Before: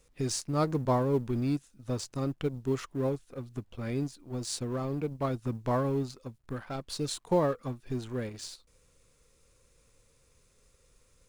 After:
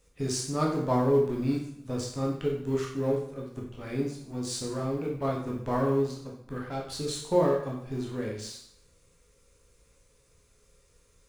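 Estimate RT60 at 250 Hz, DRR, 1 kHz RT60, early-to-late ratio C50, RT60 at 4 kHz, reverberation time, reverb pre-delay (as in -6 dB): 0.75 s, -2.5 dB, 0.65 s, 4.0 dB, 0.60 s, 0.65 s, 6 ms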